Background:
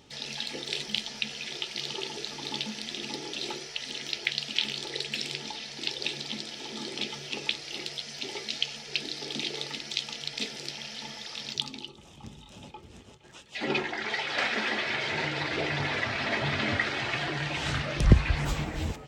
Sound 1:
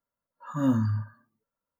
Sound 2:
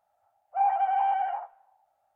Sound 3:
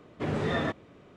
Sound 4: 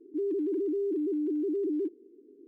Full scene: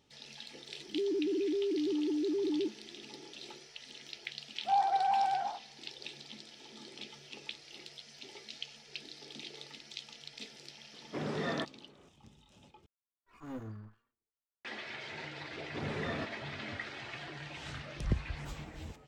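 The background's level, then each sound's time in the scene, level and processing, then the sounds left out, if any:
background -13.5 dB
0.80 s: add 4 -2.5 dB
4.12 s: add 2 -4 dB
10.93 s: add 3 -6 dB + high-pass 140 Hz 24 dB/octave
12.86 s: replace with 1 -17 dB + comb filter that takes the minimum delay 2.8 ms
15.54 s: add 3 -9 dB

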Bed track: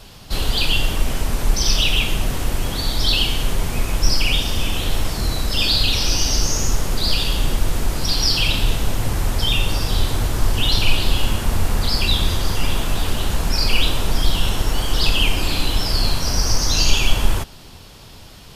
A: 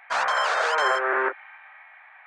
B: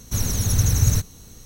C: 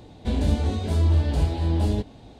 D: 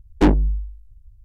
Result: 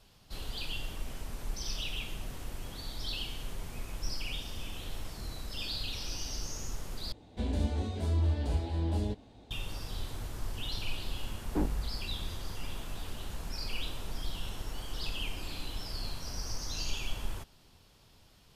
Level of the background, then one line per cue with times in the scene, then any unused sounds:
bed track -19.5 dB
7.12 s: replace with C -8.5 dB + peaking EQ 140 Hz -7.5 dB 0.34 oct
11.34 s: add D -16.5 dB + low-pass 1.3 kHz
not used: A, B

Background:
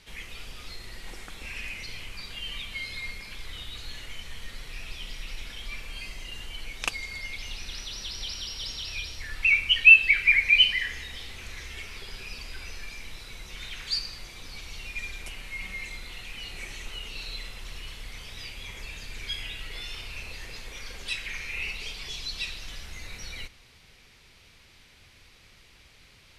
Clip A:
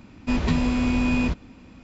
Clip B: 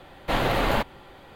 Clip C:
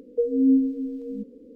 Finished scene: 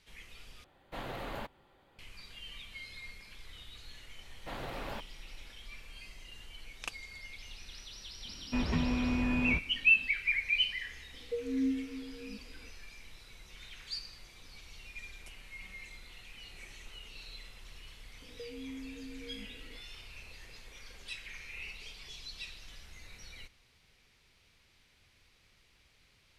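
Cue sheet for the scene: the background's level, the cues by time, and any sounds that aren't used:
background -11 dB
0.64 s: replace with B -17.5 dB
4.18 s: add B -18 dB
8.25 s: add A -9 dB + resonant high shelf 3.6 kHz -7.5 dB, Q 1.5
11.14 s: add C -13 dB
18.22 s: add C -11 dB + compression 5:1, threshold -33 dBFS

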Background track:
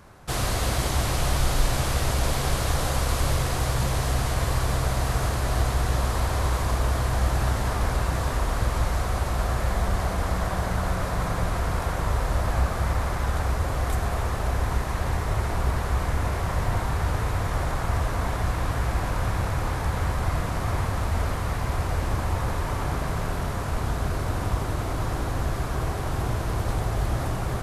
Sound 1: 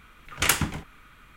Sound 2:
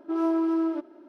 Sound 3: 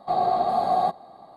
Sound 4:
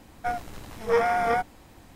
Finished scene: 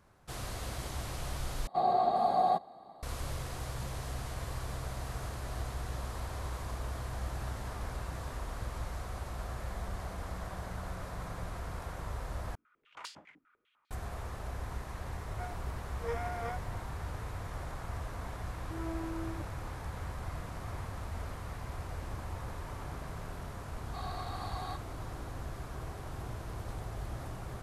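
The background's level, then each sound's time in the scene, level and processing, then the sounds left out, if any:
background track -14.5 dB
1.67 s: replace with 3 -5.5 dB
12.55 s: replace with 1 -10.5 dB + step-sequenced band-pass 10 Hz 290–4500 Hz
15.15 s: add 4 -15.5 dB
18.62 s: add 2 -16 dB
23.86 s: add 3 -5.5 dB + high-pass 1.2 kHz 24 dB/octave

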